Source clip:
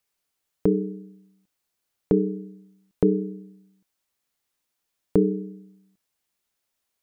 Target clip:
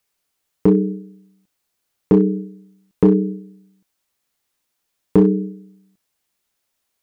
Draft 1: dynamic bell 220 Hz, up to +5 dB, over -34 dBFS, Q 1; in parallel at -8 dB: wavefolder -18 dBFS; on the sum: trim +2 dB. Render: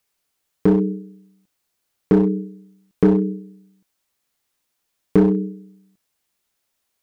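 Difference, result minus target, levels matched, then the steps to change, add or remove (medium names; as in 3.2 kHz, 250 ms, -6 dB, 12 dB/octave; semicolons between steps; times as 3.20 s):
wavefolder: distortion +12 dB
change: wavefolder -12 dBFS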